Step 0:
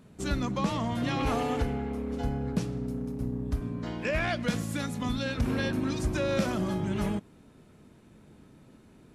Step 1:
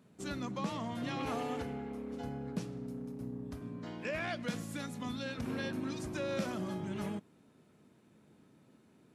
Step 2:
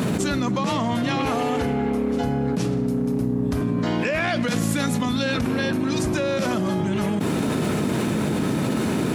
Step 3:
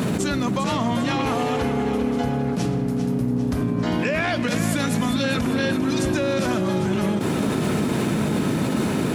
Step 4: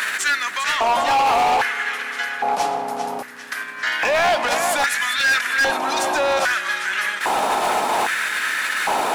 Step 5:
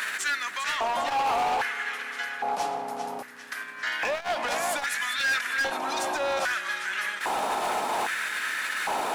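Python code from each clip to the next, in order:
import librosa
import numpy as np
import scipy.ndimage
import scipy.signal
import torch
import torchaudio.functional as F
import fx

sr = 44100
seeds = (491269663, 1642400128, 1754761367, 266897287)

y1 = scipy.signal.sosfilt(scipy.signal.butter(2, 130.0, 'highpass', fs=sr, output='sos'), x)
y1 = y1 * 10.0 ** (-7.5 / 20.0)
y2 = fx.env_flatten(y1, sr, amount_pct=100)
y2 = y2 * 10.0 ** (8.5 / 20.0)
y3 = fx.echo_feedback(y2, sr, ms=399, feedback_pct=53, wet_db=-9.5)
y4 = fx.filter_lfo_highpass(y3, sr, shape='square', hz=0.62, low_hz=800.0, high_hz=1700.0, q=4.4)
y4 = np.clip(y4, -10.0 ** (-20.5 / 20.0), 10.0 ** (-20.5 / 20.0))
y4 = y4 * 10.0 ** (6.0 / 20.0)
y5 = fx.transformer_sat(y4, sr, knee_hz=260.0)
y5 = y5 * 10.0 ** (-7.5 / 20.0)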